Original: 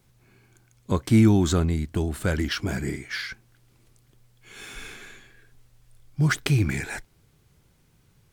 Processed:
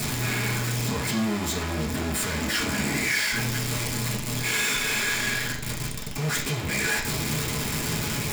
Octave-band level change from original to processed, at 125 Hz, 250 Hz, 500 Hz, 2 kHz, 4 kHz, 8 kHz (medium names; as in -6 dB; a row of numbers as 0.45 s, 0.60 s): -3.0 dB, -4.0 dB, -1.0 dB, +8.0 dB, +8.5 dB, +11.5 dB